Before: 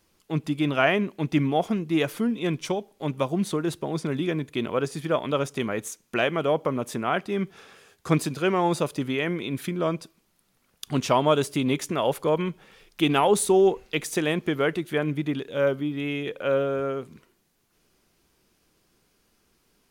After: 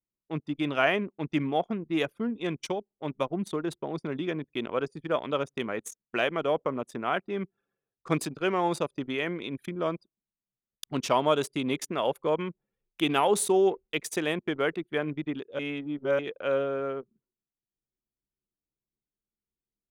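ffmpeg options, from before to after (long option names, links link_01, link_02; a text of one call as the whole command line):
ffmpeg -i in.wav -filter_complex "[0:a]asplit=3[link_01][link_02][link_03];[link_01]atrim=end=15.592[link_04];[link_02]atrim=start=15.588:end=16.192,asetpts=PTS-STARTPTS,areverse[link_05];[link_03]atrim=start=16.188[link_06];[link_04][link_05]acrossfade=duration=0.004:curve1=hsin:curve2=hsin[link_07];[link_07][link_06]acrossfade=duration=0.004:curve1=hsin:curve2=hsin,highpass=frequency=250:poles=1,anlmdn=6.31,volume=-2.5dB" out.wav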